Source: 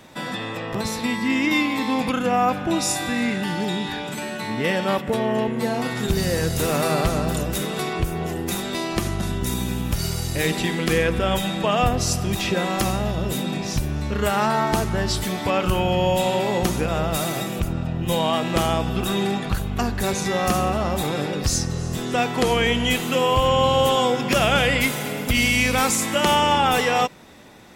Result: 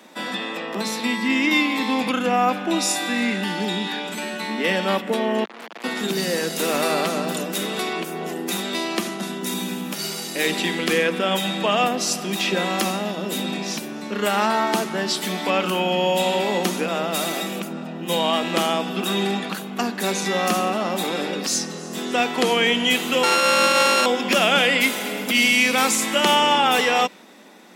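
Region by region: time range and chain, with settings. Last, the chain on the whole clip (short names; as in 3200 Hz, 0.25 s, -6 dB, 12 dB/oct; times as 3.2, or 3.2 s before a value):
5.44–5.84 hard clip -24 dBFS + core saturation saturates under 1800 Hz
23.23–24.06 sample sorter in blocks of 32 samples + LPF 10000 Hz
whole clip: steep high-pass 180 Hz 72 dB/oct; dynamic EQ 3100 Hz, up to +4 dB, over -38 dBFS, Q 0.92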